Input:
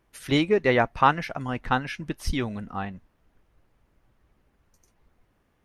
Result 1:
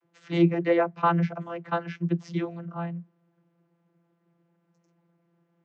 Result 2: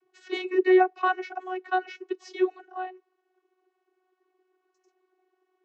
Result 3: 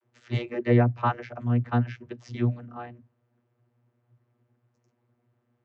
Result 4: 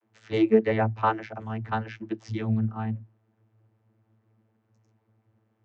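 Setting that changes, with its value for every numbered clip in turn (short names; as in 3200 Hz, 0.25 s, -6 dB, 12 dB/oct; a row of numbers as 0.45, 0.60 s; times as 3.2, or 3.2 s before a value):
vocoder, frequency: 170, 370, 120, 110 Hz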